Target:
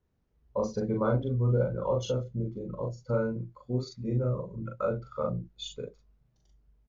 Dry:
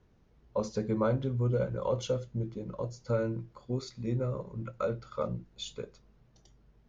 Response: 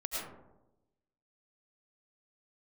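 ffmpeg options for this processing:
-filter_complex "[0:a]afftdn=nr=13:nf=-44,asplit=2[s0][s1];[s1]adelay=40,volume=0.794[s2];[s0][s2]amix=inputs=2:normalize=0"

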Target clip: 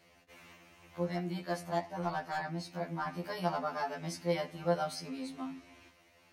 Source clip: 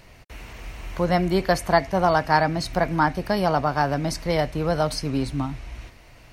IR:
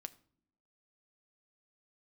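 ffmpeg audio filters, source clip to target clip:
-filter_complex "[0:a]highpass=f=220:p=1,asoftclip=type=hard:threshold=0.316[s0];[1:a]atrim=start_sample=2205[s1];[s0][s1]afir=irnorm=-1:irlink=0,asettb=1/sr,asplit=3[s2][s3][s4];[s2]atrim=end=0.564[s5];[s3]atrim=start=0.56:end=3.07,asetpts=PTS-STARTPTS,afade=t=in:d=0.004:c=qsin,afade=t=out:st=2.506:d=0.004:c=qsin,flanger=delay=4.5:depth=8.8:regen=59:speed=1.3:shape=triangular[s6];[s4]atrim=start=3.066[s7];[s5][s6]acrossfade=d=0.004:c1=hsin:c2=qsin[s8];[s8][s7]acrossfade=d=0.004:c1=qsin:c2=hsin,afftfilt=real='re*2*eq(mod(b,4),0)':imag='im*2*eq(mod(b,4),0)':win_size=2048:overlap=0.75,volume=0.596"

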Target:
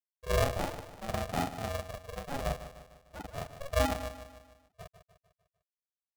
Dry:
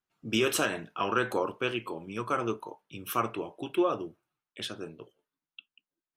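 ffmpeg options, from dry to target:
-filter_complex "[0:a]afftfilt=real='re':imag='-im':win_size=4096:overlap=0.75,acrossover=split=650[s0][s1];[s1]acompressor=threshold=0.00398:ratio=5[s2];[s0][s2]amix=inputs=2:normalize=0,highshelf=f=3600:g=6.5,bandreject=f=1000:w=9.1,afftfilt=real='re*gte(hypot(re,im),0.0501)':imag='im*gte(hypot(re,im),0.0501)':win_size=1024:overlap=0.75,lowpass=f=6400:w=0.5412,lowpass=f=6400:w=1.3066,lowshelf=f=260:g=9,asplit=2[s3][s4];[s4]adelay=150,lowpass=f=2300:p=1,volume=0.299,asplit=2[s5][s6];[s6]adelay=150,lowpass=f=2300:p=1,volume=0.5,asplit=2[s7][s8];[s8]adelay=150,lowpass=f=2300:p=1,volume=0.5,asplit=2[s9][s10];[s10]adelay=150,lowpass=f=2300:p=1,volume=0.5,asplit=2[s11][s12];[s12]adelay=150,lowpass=f=2300:p=1,volume=0.5[s13];[s3][s5][s7][s9][s11][s13]amix=inputs=6:normalize=0,asplit=2[s14][s15];[s15]acrusher=bits=4:mix=0:aa=0.5,volume=0.355[s16];[s14][s16]amix=inputs=2:normalize=0,aeval=exprs='val(0)*sgn(sin(2*PI*280*n/s))':c=same"

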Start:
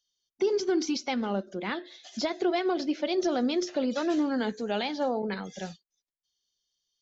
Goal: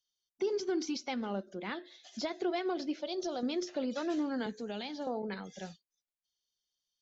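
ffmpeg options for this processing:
-filter_complex "[0:a]asettb=1/sr,asplit=3[s0][s1][s2];[s0]atrim=end=2.994[s3];[s1]atrim=start=2.99:end=3.43,asetpts=PTS-STARTPTS,afade=t=in:d=0.004:c=qsin,afade=t=out:st=0.436:d=0.004:c=qsin,equalizer=f=250:t=o:w=1:g=-7,equalizer=f=2000:t=o:w=1:g=-10,equalizer=f=4000:t=o:w=1:g=4[s4];[s2]atrim=start=3.426[s5];[s3][s4]acrossfade=d=0.004:c1=hsin:c2=qsin[s6];[s6][s5]acrossfade=d=0.004:c1=qsin:c2=hsin,asettb=1/sr,asplit=3[s7][s8][s9];[s7]atrim=end=4.464[s10];[s8]atrim=start=4.46:end=5.07,asetpts=PTS-STARTPTS,afade=t=in:d=0.004:c=qsin,afade=t=out:st=0.606:d=0.004:c=qsin,acrossover=split=350|3000[s11][s12][s13];[s12]acompressor=threshold=0.0178:ratio=6[s14];[s11][s14][s13]amix=inputs=3:normalize=0[s15];[s9]atrim=start=5.066[s16];[s10][s15]acrossfade=d=0.004:c1=hsin:c2=qsin[s17];[s17][s16]acrossfade=d=0.004:c1=qsin:c2=hsin,volume=0.473"

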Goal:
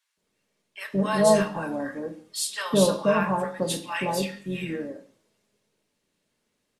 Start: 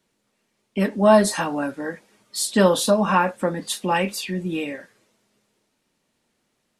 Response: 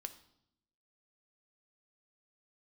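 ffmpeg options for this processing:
-filter_complex "[0:a]acrossover=split=1000[s0][s1];[s0]adelay=170[s2];[s2][s1]amix=inputs=2:normalize=0,asplit=2[s3][s4];[s4]asetrate=33038,aresample=44100,atempo=1.33484,volume=0.224[s5];[s3][s5]amix=inputs=2:normalize=0[s6];[1:a]atrim=start_sample=2205,afade=t=out:st=0.26:d=0.01,atrim=end_sample=11907[s7];[s6][s7]afir=irnorm=-1:irlink=0"

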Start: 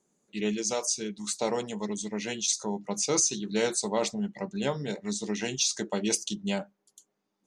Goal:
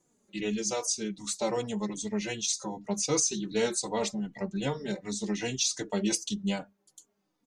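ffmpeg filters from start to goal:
-filter_complex "[0:a]lowshelf=f=100:g=9,asplit=2[s0][s1];[s1]acompressor=threshold=0.0112:ratio=6,volume=0.75[s2];[s0][s2]amix=inputs=2:normalize=0,asplit=2[s3][s4];[s4]adelay=3.5,afreqshift=-2.6[s5];[s3][s5]amix=inputs=2:normalize=1"

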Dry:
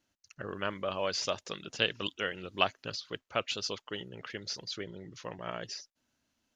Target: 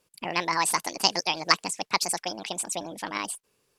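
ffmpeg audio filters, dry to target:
-af "asetrate=76440,aresample=44100,volume=2.51"

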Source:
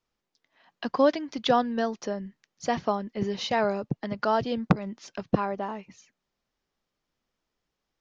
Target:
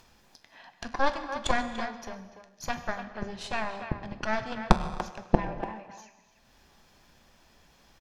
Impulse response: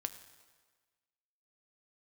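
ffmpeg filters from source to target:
-filter_complex "[0:a]acompressor=mode=upward:threshold=0.0398:ratio=2.5,aeval=exprs='0.531*(cos(1*acos(clip(val(0)/0.531,-1,1)))-cos(1*PI/2))+0.119*(cos(3*acos(clip(val(0)/0.531,-1,1)))-cos(3*PI/2))+0.237*(cos(4*acos(clip(val(0)/0.531,-1,1)))-cos(4*PI/2))+0.00376*(cos(5*acos(clip(val(0)/0.531,-1,1)))-cos(5*PI/2))+0.0473*(cos(6*acos(clip(val(0)/0.531,-1,1)))-cos(6*PI/2))':c=same,aecho=1:1:1.2:0.32,asplit=2[s0][s1];[s1]adelay=290,highpass=300,lowpass=3400,asoftclip=type=hard:threshold=0.282,volume=0.355[s2];[s0][s2]amix=inputs=2:normalize=0[s3];[1:a]atrim=start_sample=2205,afade=t=out:st=0.33:d=0.01,atrim=end_sample=14994,asetrate=32634,aresample=44100[s4];[s3][s4]afir=irnorm=-1:irlink=0"

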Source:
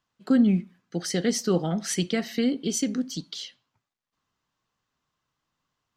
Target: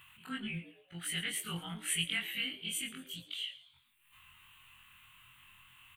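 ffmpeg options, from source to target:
-filter_complex "[0:a]afftfilt=real='re':imag='-im':win_size=2048:overlap=0.75,acompressor=mode=upward:threshold=0.01:ratio=2.5,firequalizer=gain_entry='entry(110,0);entry(220,-17);entry(550,-23);entry(960,-2);entry(1600,0);entry(2700,14);entry(5200,-25);entry(8800,9)':delay=0.05:min_phase=1,asplit=2[s0][s1];[s1]asplit=4[s2][s3][s4][s5];[s2]adelay=112,afreqshift=130,volume=0.158[s6];[s3]adelay=224,afreqshift=260,volume=0.0631[s7];[s4]adelay=336,afreqshift=390,volume=0.0254[s8];[s5]adelay=448,afreqshift=520,volume=0.0101[s9];[s6][s7][s8][s9]amix=inputs=4:normalize=0[s10];[s0][s10]amix=inputs=2:normalize=0,volume=0.794"

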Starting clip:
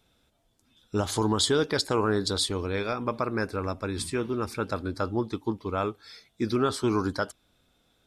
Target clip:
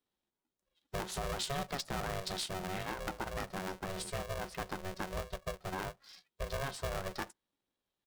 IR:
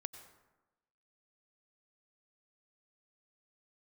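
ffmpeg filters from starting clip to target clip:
-filter_complex "[0:a]asplit=2[s0][s1];[s1]adelay=13,volume=0.211[s2];[s0][s2]amix=inputs=2:normalize=0,acompressor=threshold=0.0316:ratio=2.5,afftdn=nr=16:nf=-48,aeval=exprs='val(0)*sgn(sin(2*PI*280*n/s))':c=same,volume=0.473"

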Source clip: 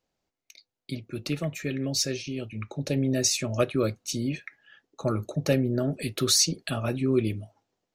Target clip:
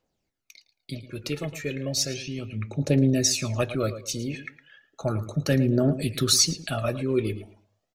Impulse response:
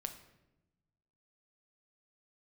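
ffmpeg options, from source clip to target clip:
-filter_complex "[0:a]asplit=2[s0][s1];[s1]adelay=111,lowpass=f=4400:p=1,volume=0.224,asplit=2[s2][s3];[s3]adelay=111,lowpass=f=4400:p=1,volume=0.27,asplit=2[s4][s5];[s5]adelay=111,lowpass=f=4400:p=1,volume=0.27[s6];[s0][s2][s4][s6]amix=inputs=4:normalize=0,aphaser=in_gain=1:out_gain=1:delay=2.4:decay=0.48:speed=0.34:type=triangular"

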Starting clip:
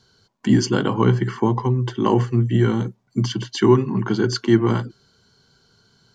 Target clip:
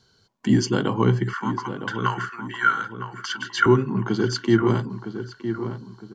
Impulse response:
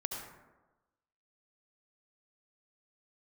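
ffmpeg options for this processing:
-filter_complex "[0:a]asettb=1/sr,asplit=3[s0][s1][s2];[s0]atrim=end=1.334[s3];[s1]atrim=start=1.33:end=3.66,asetpts=PTS-STARTPTS,afade=t=in:d=0.004:c=qsin,afade=t=out:st=2.326:d=0.004:c=qsin,highpass=f=1400:t=q:w=9.9[s4];[s2]atrim=start=3.656[s5];[s3][s4]acrossfade=d=0.004:c1=hsin:c2=qsin[s6];[s6][s5]acrossfade=d=0.004:c1=qsin:c2=hsin,asplit=2[s7][s8];[s8]adelay=960,lowpass=f=1800:p=1,volume=0.355,asplit=2[s9][s10];[s10]adelay=960,lowpass=f=1800:p=1,volume=0.39,asplit=2[s11][s12];[s12]adelay=960,lowpass=f=1800:p=1,volume=0.39,asplit=2[s13][s14];[s14]adelay=960,lowpass=f=1800:p=1,volume=0.39[s15];[s7][s9][s11][s13][s15]amix=inputs=5:normalize=0,volume=0.75"

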